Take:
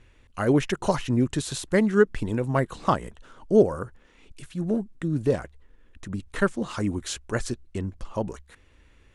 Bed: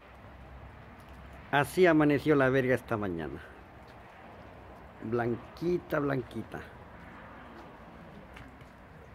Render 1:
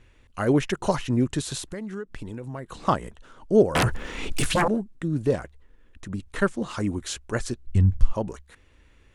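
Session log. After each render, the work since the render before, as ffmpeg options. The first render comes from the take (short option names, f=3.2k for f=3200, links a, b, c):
-filter_complex "[0:a]asettb=1/sr,asplit=3[a][b][c];[a]atrim=end=1.664[d];[b]atrim=start=1.66:end=2.77,asetpts=PTS-STARTPTS,afade=t=in:d=0.004:c=qsin,afade=t=out:st=1.106:d=0.004:c=qsin,acompressor=threshold=-32dB:ratio=5:attack=3.2:release=140:knee=1:detection=peak[e];[c]atrim=start=2.766[f];[d][e]acrossfade=d=0.004:c1=hsin:c2=qsin[g];[g][f]acrossfade=d=0.004:c1=qsin:c2=hsin,asettb=1/sr,asplit=3[h][i][j];[h]atrim=end=3.754[k];[i]atrim=start=3.75:end=4.68,asetpts=PTS-STARTPTS,afade=t=in:d=0.004:c=qsin,afade=t=out:st=0.926:d=0.004:c=qsin,aeval=exprs='0.141*sin(PI/2*8.91*val(0)/0.141)':c=same[l];[j]atrim=start=4.676[m];[k][l]acrossfade=d=0.004:c1=hsin:c2=qsin[n];[n][m]acrossfade=d=0.004:c1=qsin:c2=hsin,asplit=3[o][p][q];[o]afade=t=out:st=7.65:d=0.02[r];[p]asubboost=boost=10.5:cutoff=120,afade=t=in:st=7.65:d=0.02,afade=t=out:st=8.12:d=0.02[s];[q]afade=t=in:st=8.12:d=0.02[t];[r][s][t]amix=inputs=3:normalize=0"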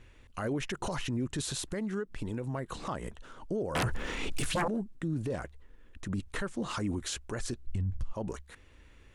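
-af "acompressor=threshold=-23dB:ratio=6,alimiter=level_in=1.5dB:limit=-24dB:level=0:latency=1:release=32,volume=-1.5dB"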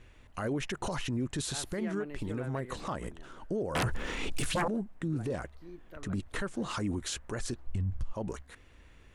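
-filter_complex "[1:a]volume=-19dB[a];[0:a][a]amix=inputs=2:normalize=0"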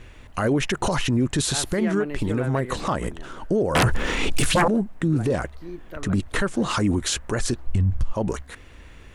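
-af "volume=11.5dB"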